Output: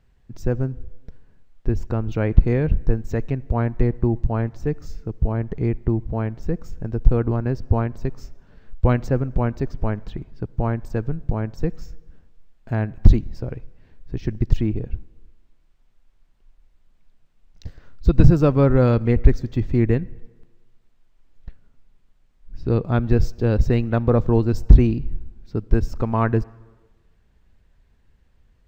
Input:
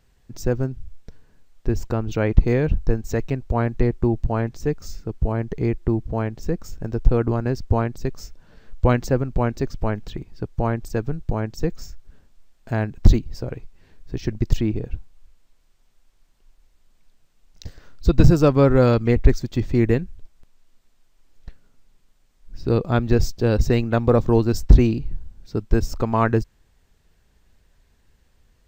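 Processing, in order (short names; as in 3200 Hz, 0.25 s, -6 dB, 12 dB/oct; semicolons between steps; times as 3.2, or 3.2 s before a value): tone controls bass +4 dB, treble -9 dB; on a send: reverb RT60 1.3 s, pre-delay 53 ms, DRR 23.5 dB; on the sum: gain -2.5 dB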